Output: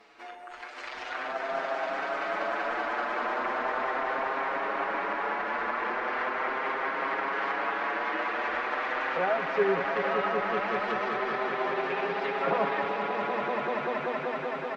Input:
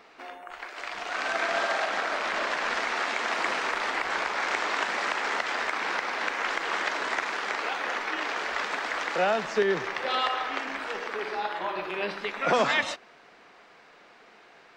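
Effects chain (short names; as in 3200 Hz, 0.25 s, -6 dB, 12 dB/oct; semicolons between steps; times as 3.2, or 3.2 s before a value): treble ducked by the level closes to 1300 Hz, closed at -25 dBFS; swelling echo 0.192 s, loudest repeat 5, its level -6.5 dB; endless flanger 6.6 ms +0.38 Hz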